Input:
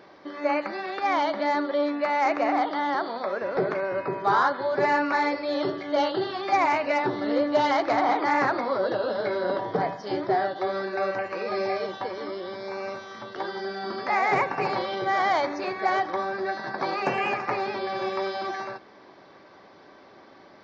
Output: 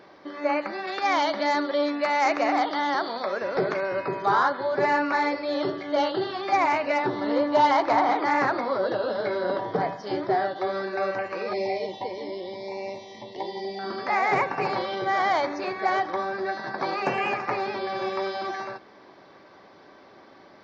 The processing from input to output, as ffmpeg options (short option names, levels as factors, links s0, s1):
-filter_complex "[0:a]asettb=1/sr,asplit=3[s0][s1][s2];[s0]atrim=end=0.874[s3];[s1]atrim=start=0.87:end=4.26,asetpts=PTS-STARTPTS,afade=t=in:d=0.004:c=qsin,afade=t=out:st=3.386:d=0.004:c=qsin,highshelf=f=3700:g=11.5[s4];[s2]atrim=start=4.256[s5];[s3][s4]acrossfade=d=0.004:c1=hsin:c2=qsin[s6];[s6][s5]acrossfade=d=0.004:c1=qsin:c2=hsin,asettb=1/sr,asplit=3[s7][s8][s9];[s7]atrim=end=7.164[s10];[s8]atrim=start=7.16:end=8.03,asetpts=PTS-STARTPTS,afade=t=in:d=0.004:c=qsin,afade=t=out:st=0.866:d=0.004:c=qsin,equalizer=f=960:w=5.9:g=10.5[s11];[s9]atrim=start=8.026[s12];[s10][s11]acrossfade=d=0.004:c1=hsin:c2=qsin[s13];[s13][s12]acrossfade=d=0.004:c1=qsin:c2=hsin,asettb=1/sr,asplit=3[s14][s15][s16];[s14]atrim=end=11.534[s17];[s15]atrim=start=11.53:end=13.79,asetpts=PTS-STARTPTS,afade=t=in:d=0.004:c=qsin,afade=t=out:st=2.256:d=0.004:c=qsin,asuperstop=centerf=1400:order=12:qfactor=1.7[s18];[s16]atrim=start=13.786[s19];[s17][s18]acrossfade=d=0.004:c1=hsin:c2=qsin[s20];[s20][s19]acrossfade=d=0.004:c1=qsin:c2=hsin"